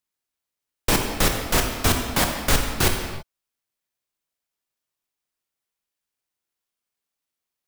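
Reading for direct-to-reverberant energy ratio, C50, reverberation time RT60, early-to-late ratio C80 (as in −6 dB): 2.5 dB, 4.0 dB, non-exponential decay, 6.0 dB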